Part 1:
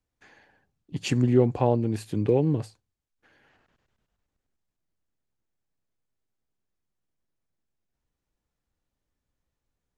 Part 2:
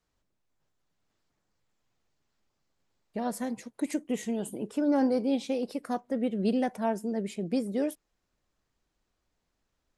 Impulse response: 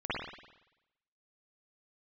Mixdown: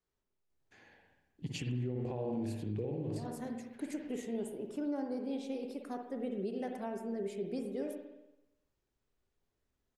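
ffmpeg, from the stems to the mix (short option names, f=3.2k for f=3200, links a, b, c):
-filter_complex "[0:a]equalizer=f=1.2k:w=1.7:g=-5.5,adelay=500,volume=3dB,asplit=2[a][b];[b]volume=-17dB[c];[1:a]equalizer=f=400:w=7.3:g=12,volume=-11.5dB,asplit=3[d][e][f];[e]volume=-9.5dB[g];[f]apad=whole_len=461919[h];[a][h]sidechaingate=range=-11dB:threshold=-59dB:ratio=16:detection=peak[i];[2:a]atrim=start_sample=2205[j];[c][g]amix=inputs=2:normalize=0[k];[k][j]afir=irnorm=-1:irlink=0[l];[i][d][l]amix=inputs=3:normalize=0,alimiter=level_in=4.5dB:limit=-24dB:level=0:latency=1:release=293,volume=-4.5dB"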